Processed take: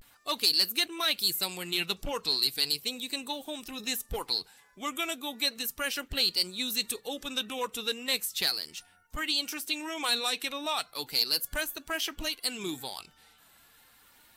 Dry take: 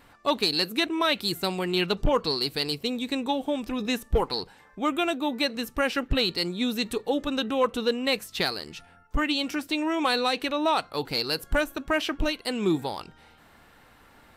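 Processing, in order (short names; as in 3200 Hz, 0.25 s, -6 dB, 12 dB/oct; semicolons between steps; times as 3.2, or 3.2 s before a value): bin magnitudes rounded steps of 15 dB; pre-emphasis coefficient 0.9; vibrato 0.36 Hz 60 cents; gain +7 dB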